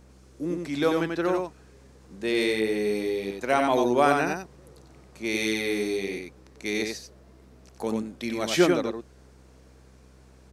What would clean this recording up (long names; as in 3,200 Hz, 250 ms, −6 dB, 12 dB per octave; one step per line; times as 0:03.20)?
hum removal 64.3 Hz, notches 9
echo removal 91 ms −4 dB